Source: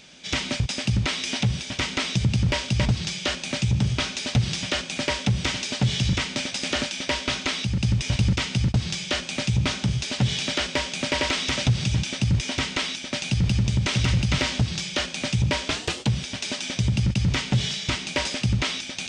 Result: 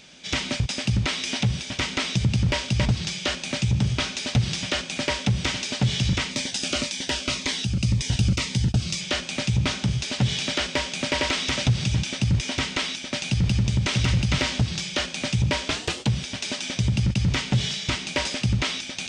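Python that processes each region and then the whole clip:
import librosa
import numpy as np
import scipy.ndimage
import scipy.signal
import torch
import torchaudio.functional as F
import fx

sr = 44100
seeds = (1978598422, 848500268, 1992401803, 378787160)

y = fx.chain(x, sr, fx.high_shelf(hz=6500.0, db=6.0),
    fx.notch_cascade(direction='falling', hz=1.9), at=(6.31, 9.01))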